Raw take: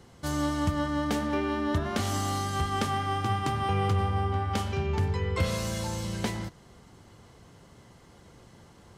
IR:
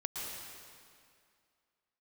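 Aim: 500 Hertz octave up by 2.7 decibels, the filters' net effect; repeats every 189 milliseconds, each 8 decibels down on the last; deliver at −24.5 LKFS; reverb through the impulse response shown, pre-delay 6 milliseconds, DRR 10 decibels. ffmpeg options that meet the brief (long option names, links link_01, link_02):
-filter_complex "[0:a]equalizer=frequency=500:width_type=o:gain=3.5,aecho=1:1:189|378|567|756|945:0.398|0.159|0.0637|0.0255|0.0102,asplit=2[link_01][link_02];[1:a]atrim=start_sample=2205,adelay=6[link_03];[link_02][link_03]afir=irnorm=-1:irlink=0,volume=-12.5dB[link_04];[link_01][link_04]amix=inputs=2:normalize=0,volume=3.5dB"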